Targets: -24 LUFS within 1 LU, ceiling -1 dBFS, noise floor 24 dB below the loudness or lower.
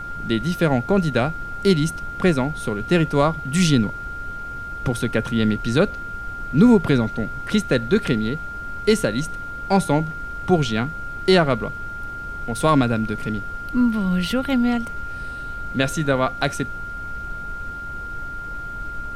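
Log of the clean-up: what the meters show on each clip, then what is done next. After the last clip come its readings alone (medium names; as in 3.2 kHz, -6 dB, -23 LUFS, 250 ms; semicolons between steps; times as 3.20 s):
steady tone 1.4 kHz; tone level -30 dBFS; noise floor -32 dBFS; noise floor target -46 dBFS; loudness -22.0 LUFS; peak level -4.5 dBFS; loudness target -24.0 LUFS
-> band-stop 1.4 kHz, Q 30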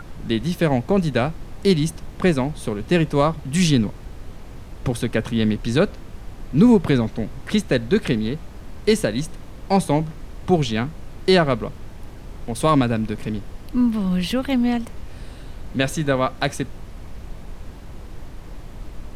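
steady tone not found; noise floor -38 dBFS; noise floor target -46 dBFS
-> noise print and reduce 8 dB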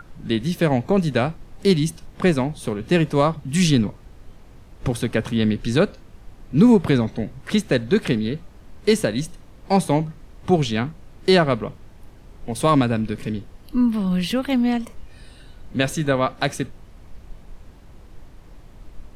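noise floor -46 dBFS; loudness -21.5 LUFS; peak level -5.0 dBFS; loudness target -24.0 LUFS
-> trim -2.5 dB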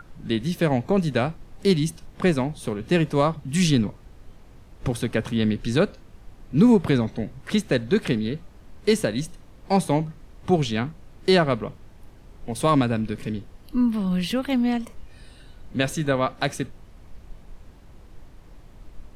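loudness -24.0 LUFS; peak level -7.5 dBFS; noise floor -48 dBFS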